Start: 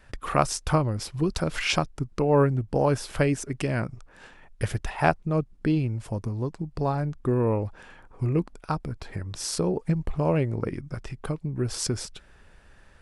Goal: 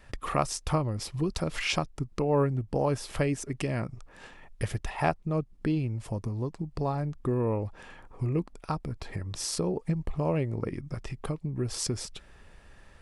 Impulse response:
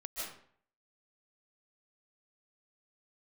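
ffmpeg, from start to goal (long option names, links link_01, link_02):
-filter_complex "[0:a]bandreject=frequency=1500:width=9.3,asplit=2[link_01][link_02];[link_02]acompressor=threshold=-34dB:ratio=6,volume=2.5dB[link_03];[link_01][link_03]amix=inputs=2:normalize=0,volume=-6.5dB"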